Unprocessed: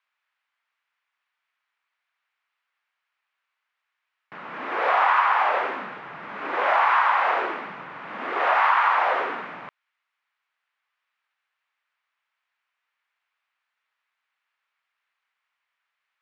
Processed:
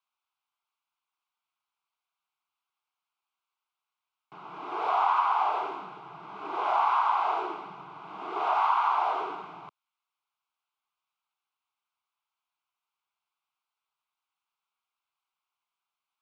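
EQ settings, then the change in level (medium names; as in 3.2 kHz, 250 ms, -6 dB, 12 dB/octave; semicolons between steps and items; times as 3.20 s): static phaser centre 360 Hz, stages 8; -3.0 dB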